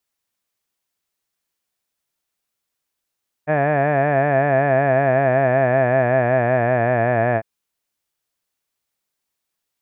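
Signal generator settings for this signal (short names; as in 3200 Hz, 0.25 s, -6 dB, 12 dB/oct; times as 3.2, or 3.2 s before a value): formant-synthesis vowel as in had, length 3.95 s, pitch 147 Hz, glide -4 st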